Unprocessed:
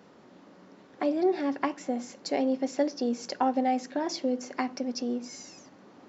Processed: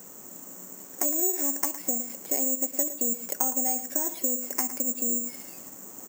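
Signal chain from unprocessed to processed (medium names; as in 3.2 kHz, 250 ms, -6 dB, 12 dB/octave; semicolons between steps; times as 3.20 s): compression 4:1, threshold -35 dBFS, peak gain reduction 12.5 dB; on a send: delay 111 ms -13 dB; on the sum: careless resampling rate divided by 6×, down filtered, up zero stuff; trim +2 dB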